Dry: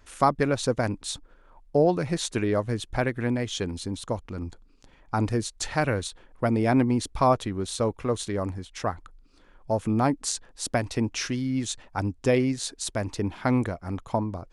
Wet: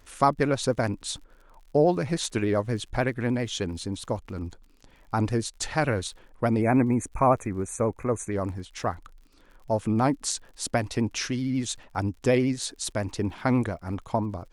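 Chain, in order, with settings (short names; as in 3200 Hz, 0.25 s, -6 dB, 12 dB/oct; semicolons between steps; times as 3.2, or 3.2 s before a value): spectral gain 6.61–8.32, 2600–5900 Hz -29 dB; crackle 63/s -46 dBFS; vibrato 13 Hz 53 cents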